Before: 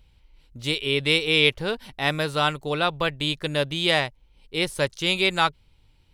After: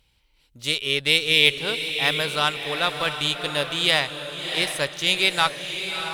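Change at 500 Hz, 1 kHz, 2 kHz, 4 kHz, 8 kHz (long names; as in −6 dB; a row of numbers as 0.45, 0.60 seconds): −2.5, 0.0, +2.5, +4.0, +6.5 decibels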